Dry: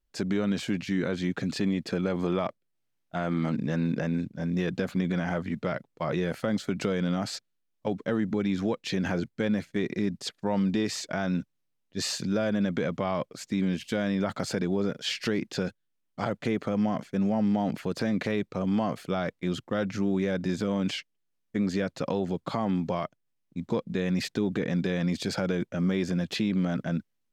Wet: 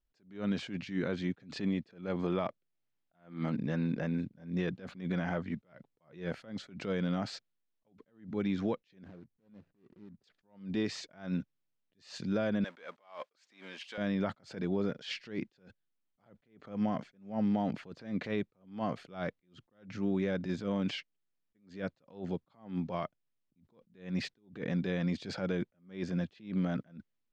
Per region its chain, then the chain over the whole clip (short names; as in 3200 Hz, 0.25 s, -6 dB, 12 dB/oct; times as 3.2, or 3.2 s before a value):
9.04–10.24 median filter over 41 samples + compressor 12:1, threshold -42 dBFS
12.64–13.98 G.711 law mismatch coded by mu + HPF 760 Hz
whole clip: LPF 4600 Hz 12 dB/oct; attack slew limiter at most 150 dB/s; gain -4.5 dB